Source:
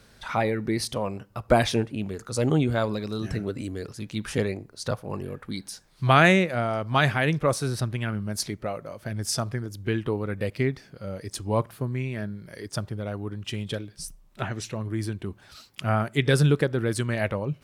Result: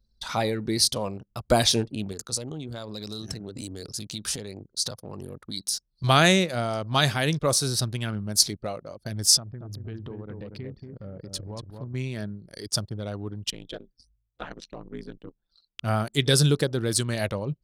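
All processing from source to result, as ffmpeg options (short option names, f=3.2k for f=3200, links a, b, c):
-filter_complex "[0:a]asettb=1/sr,asplit=3[a][b][c];[a]atrim=end=2.124[d];[b]atrim=start=2.12:end=6.04,asetpts=PTS-STARTPTS,afade=t=in:d=0.004:c=qsin,afade=t=out:st=3.916:d=0.004:c=qsin,highpass=49,highshelf=f=5.3k:g=3.5,acompressor=threshold=-31dB:ratio=8:attack=3.2:release=140:knee=1:detection=peak[e];[c]atrim=start=6.036[f];[d][e]acrossfade=d=0.004:c1=hsin:c2=qsin[g];[g][f]acrossfade=d=0.004:c1=qsin:c2=hsin,asettb=1/sr,asplit=3[h][i][j];[h]atrim=end=9.374[k];[i]atrim=start=9.37:end=11.94,asetpts=PTS-STARTPTS,afade=t=in:d=0.004:c=qsin,afade=t=out:st=2.566:d=0.004:c=qsin,bass=f=250:g=3,treble=f=4k:g=-12,acompressor=threshold=-35dB:ratio=4:attack=3.2:release=140:knee=1:detection=peak,asplit=2[l][m];[m]adelay=233,lowpass=f=2.7k:p=1,volume=-4.5dB,asplit=2[n][o];[o]adelay=233,lowpass=f=2.7k:p=1,volume=0.3,asplit=2[p][q];[q]adelay=233,lowpass=f=2.7k:p=1,volume=0.3,asplit=2[r][s];[s]adelay=233,lowpass=f=2.7k:p=1,volume=0.3[t];[l][n][p][r][t]amix=inputs=5:normalize=0,atrim=end_sample=113337[u];[j]atrim=start=11.936[v];[k][u]acrossfade=d=0.004:c1=hsin:c2=qsin[w];[w][v]acrossfade=d=0.004:c1=qsin:c2=hsin,asettb=1/sr,asplit=3[x][y][z];[x]atrim=end=13.504[aa];[y]atrim=start=13.5:end=15.83,asetpts=PTS-STARTPTS,afade=t=in:d=0.004:c=qsin,afade=t=out:st=2.326:d=0.004:c=qsin,acrossover=split=3500[ab][ac];[ac]acompressor=threshold=-49dB:ratio=4:attack=1:release=60[ad];[ab][ad]amix=inputs=2:normalize=0,bass=f=250:g=-9,treble=f=4k:g=-7,aeval=exprs='val(0)*sin(2*PI*81*n/s)':c=same[ae];[z]atrim=start=15.826[af];[aa][ae]acrossfade=d=0.004:c1=hsin:c2=qsin[ag];[ag][af]acrossfade=d=0.004:c1=qsin:c2=hsin,highshelf=f=3.1k:t=q:w=1.5:g=10,anlmdn=0.631,volume=-1dB"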